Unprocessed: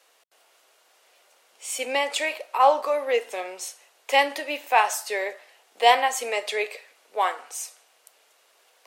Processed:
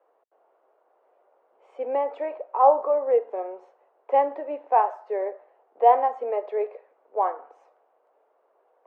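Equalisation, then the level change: Butterworth band-pass 620 Hz, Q 0.85; tilt EQ -3 dB/octave; 0.0 dB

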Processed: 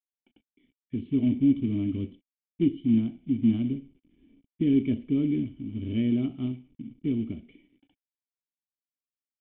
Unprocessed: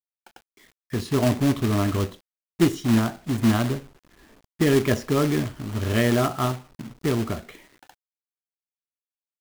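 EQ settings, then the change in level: cascade formant filter i; bass shelf 350 Hz +3.5 dB; 0.0 dB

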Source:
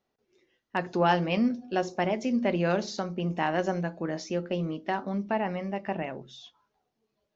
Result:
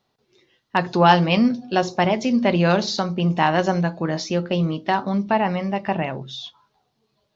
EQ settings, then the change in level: ten-band graphic EQ 125 Hz +10 dB, 1 kHz +6 dB, 4 kHz +10 dB; +5.0 dB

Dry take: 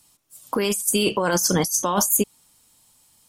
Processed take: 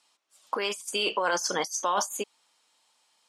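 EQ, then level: band-pass 590–4500 Hz; -1.5 dB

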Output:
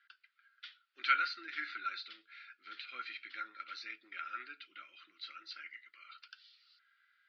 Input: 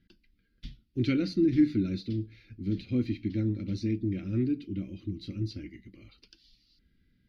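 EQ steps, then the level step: ladder high-pass 1.3 kHz, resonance 80%; low-pass 4.4 kHz 24 dB/octave; +15.0 dB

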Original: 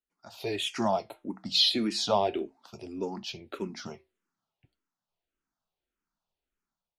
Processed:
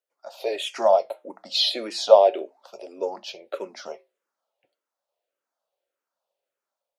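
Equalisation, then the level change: resonant high-pass 550 Hz, resonance Q 6.7; +1.0 dB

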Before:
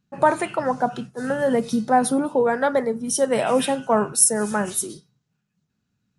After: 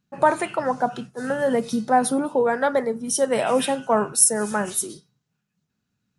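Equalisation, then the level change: bass shelf 240 Hz -4 dB; 0.0 dB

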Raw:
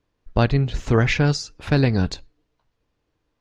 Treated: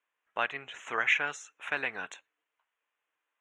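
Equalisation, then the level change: high-pass 1.3 kHz 12 dB/octave; Butterworth band-stop 4.7 kHz, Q 1.1; low-pass 6.8 kHz 12 dB/octave; 0.0 dB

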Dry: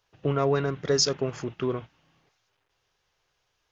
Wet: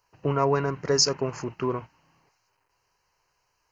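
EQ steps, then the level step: Butterworth band-stop 3.5 kHz, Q 3; peaking EQ 970 Hz +10 dB 0.31 oct; treble shelf 5.9 kHz +5.5 dB; 0.0 dB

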